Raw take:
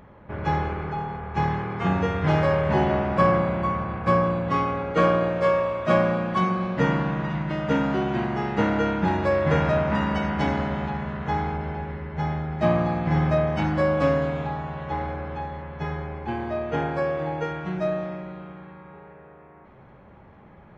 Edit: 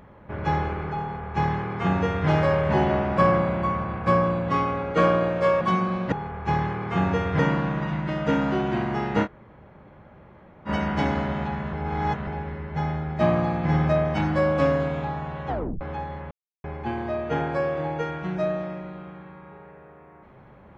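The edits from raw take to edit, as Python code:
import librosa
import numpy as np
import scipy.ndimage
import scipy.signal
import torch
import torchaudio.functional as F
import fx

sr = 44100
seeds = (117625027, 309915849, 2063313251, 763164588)

y = fx.edit(x, sr, fx.duplicate(start_s=1.01, length_s=1.27, to_s=6.81),
    fx.cut(start_s=5.61, length_s=0.69),
    fx.room_tone_fill(start_s=8.67, length_s=1.43, crossfade_s=0.06),
    fx.reverse_span(start_s=11.15, length_s=0.54),
    fx.tape_stop(start_s=14.9, length_s=0.33),
    fx.silence(start_s=15.73, length_s=0.33), tone=tone)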